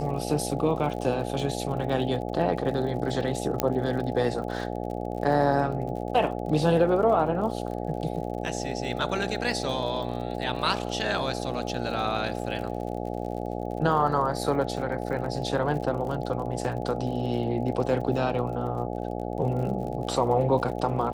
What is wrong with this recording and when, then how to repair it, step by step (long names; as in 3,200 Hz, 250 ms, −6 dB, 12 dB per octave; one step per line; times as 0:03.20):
mains buzz 60 Hz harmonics 14 −32 dBFS
surface crackle 51 per second −36 dBFS
0:03.60: click −8 dBFS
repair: click removal
hum removal 60 Hz, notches 14